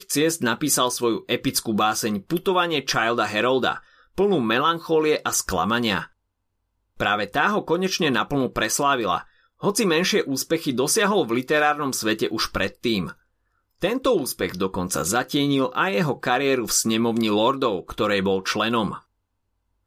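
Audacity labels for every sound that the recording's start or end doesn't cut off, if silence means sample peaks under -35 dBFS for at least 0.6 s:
7.000000	13.120000	sound
13.820000	18.980000	sound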